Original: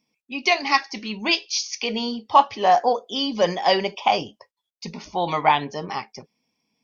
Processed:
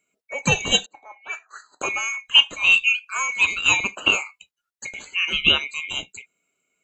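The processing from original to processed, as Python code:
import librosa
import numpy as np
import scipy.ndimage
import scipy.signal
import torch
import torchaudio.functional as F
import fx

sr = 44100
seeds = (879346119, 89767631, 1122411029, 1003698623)

y = fx.band_swap(x, sr, width_hz=2000)
y = fx.auto_wah(y, sr, base_hz=550.0, top_hz=2200.0, q=4.8, full_db=-18.0, direction='up', at=(0.86, 1.81))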